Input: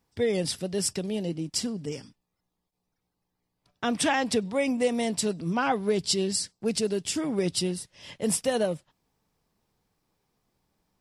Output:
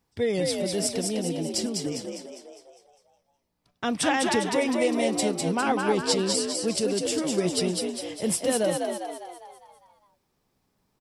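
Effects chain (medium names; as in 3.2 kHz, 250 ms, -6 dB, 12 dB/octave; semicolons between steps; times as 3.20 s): frequency-shifting echo 202 ms, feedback 51%, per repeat +58 Hz, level -3.5 dB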